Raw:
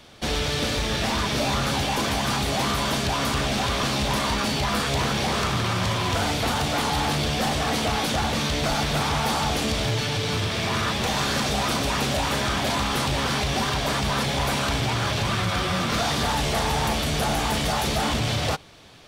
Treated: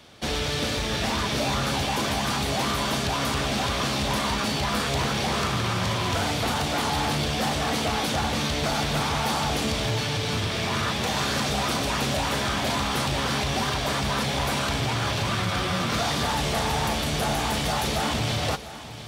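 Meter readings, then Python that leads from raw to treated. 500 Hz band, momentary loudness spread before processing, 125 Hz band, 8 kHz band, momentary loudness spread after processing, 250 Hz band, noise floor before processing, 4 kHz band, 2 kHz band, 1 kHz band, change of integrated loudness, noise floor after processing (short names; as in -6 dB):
-1.5 dB, 1 LU, -1.5 dB, -1.5 dB, 1 LU, -1.5 dB, -26 dBFS, -1.5 dB, -1.5 dB, -1.5 dB, -1.5 dB, -28 dBFS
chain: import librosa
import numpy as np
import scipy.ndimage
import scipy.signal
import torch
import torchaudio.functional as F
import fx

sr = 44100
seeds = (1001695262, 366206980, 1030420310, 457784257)

y = scipy.signal.sosfilt(scipy.signal.butter(2, 50.0, 'highpass', fs=sr, output='sos'), x)
y = fx.echo_feedback(y, sr, ms=700, feedback_pct=50, wet_db=-14.5)
y = y * 10.0 ** (-1.5 / 20.0)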